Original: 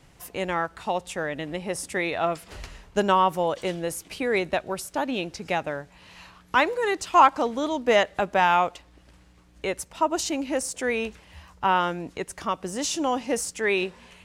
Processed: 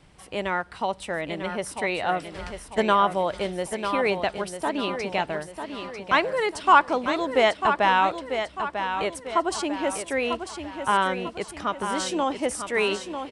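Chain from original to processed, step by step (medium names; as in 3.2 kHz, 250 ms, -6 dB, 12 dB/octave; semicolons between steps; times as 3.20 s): peaking EQ 6.3 kHz -8 dB 0.36 oct; tape speed +7%; on a send: feedback delay 946 ms, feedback 45%, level -8 dB; on the sum: resampled via 22.05 kHz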